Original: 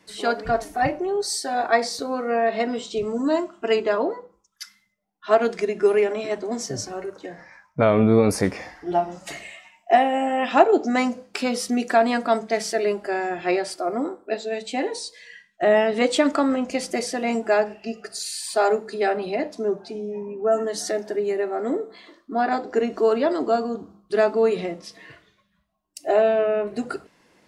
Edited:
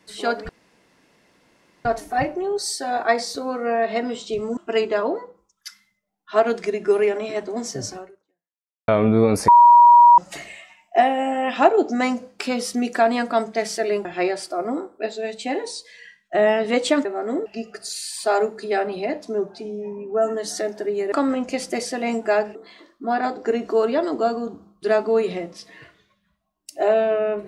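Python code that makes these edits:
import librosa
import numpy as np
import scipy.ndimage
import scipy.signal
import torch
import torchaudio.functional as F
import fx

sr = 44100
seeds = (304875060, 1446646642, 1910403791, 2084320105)

y = fx.edit(x, sr, fx.insert_room_tone(at_s=0.49, length_s=1.36),
    fx.cut(start_s=3.21, length_s=0.31),
    fx.fade_out_span(start_s=6.91, length_s=0.92, curve='exp'),
    fx.bleep(start_s=8.43, length_s=0.7, hz=957.0, db=-6.5),
    fx.cut(start_s=13.0, length_s=0.33),
    fx.swap(start_s=16.33, length_s=1.43, other_s=21.42, other_length_s=0.41), tone=tone)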